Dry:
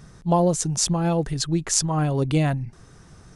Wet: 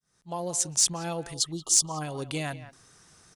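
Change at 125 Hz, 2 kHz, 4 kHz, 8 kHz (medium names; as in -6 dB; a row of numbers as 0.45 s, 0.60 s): -15.0 dB, -4.5 dB, -0.5 dB, +1.0 dB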